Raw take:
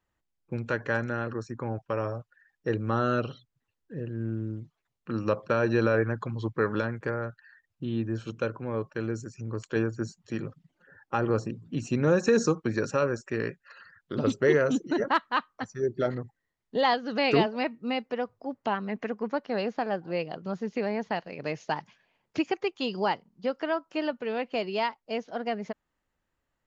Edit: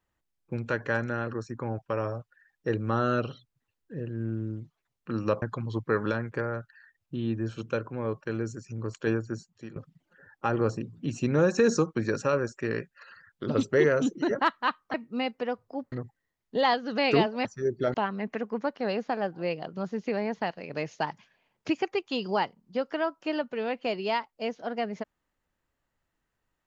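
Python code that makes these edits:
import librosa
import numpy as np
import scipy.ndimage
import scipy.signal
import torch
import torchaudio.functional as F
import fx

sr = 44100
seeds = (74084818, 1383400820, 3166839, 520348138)

y = fx.edit(x, sr, fx.cut(start_s=5.42, length_s=0.69),
    fx.fade_out_to(start_s=9.84, length_s=0.61, floor_db=-14.0),
    fx.swap(start_s=15.63, length_s=0.49, other_s=17.65, other_length_s=0.98), tone=tone)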